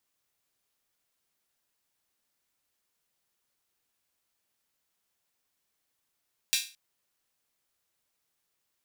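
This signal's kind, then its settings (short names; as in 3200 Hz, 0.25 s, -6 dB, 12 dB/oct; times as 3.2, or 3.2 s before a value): open hi-hat length 0.22 s, high-pass 3000 Hz, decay 0.34 s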